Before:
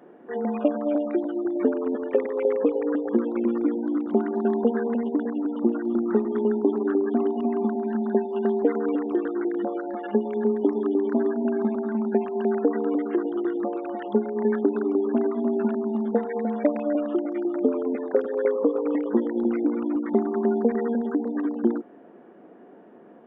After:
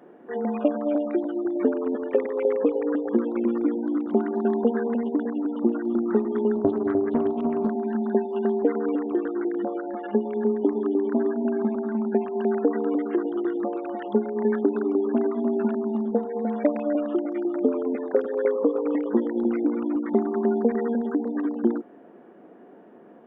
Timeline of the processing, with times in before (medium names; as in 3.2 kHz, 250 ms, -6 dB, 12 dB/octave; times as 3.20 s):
6.55–7.72 s: loudspeaker Doppler distortion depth 0.33 ms
8.45–12.34 s: distance through air 170 m
16.01–16.42 s: peaking EQ 2.1 kHz -14.5 dB 1.2 oct